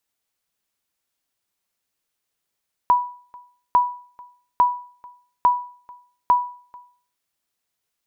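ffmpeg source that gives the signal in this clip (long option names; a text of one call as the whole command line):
ffmpeg -f lavfi -i "aevalsrc='0.376*(sin(2*PI*981*mod(t,0.85))*exp(-6.91*mod(t,0.85)/0.46)+0.0501*sin(2*PI*981*max(mod(t,0.85)-0.44,0))*exp(-6.91*max(mod(t,0.85)-0.44,0)/0.46))':duration=4.25:sample_rate=44100" out.wav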